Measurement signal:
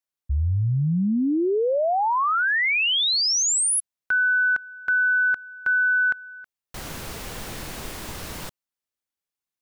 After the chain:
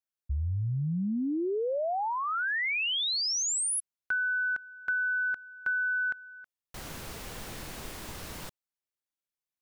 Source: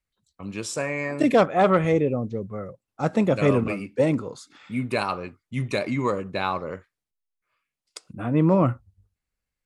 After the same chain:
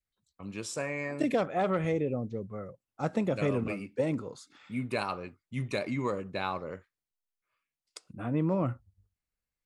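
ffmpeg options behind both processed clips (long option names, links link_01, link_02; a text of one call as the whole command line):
ffmpeg -i in.wav -af "adynamicequalizer=threshold=0.00794:dfrequency=1100:dqfactor=2.8:tfrequency=1100:tqfactor=2.8:attack=5:release=100:ratio=0.375:range=2:mode=cutabove:tftype=bell,acompressor=threshold=-25dB:ratio=2:attack=69:release=98:knee=1:detection=peak,volume=-6.5dB" out.wav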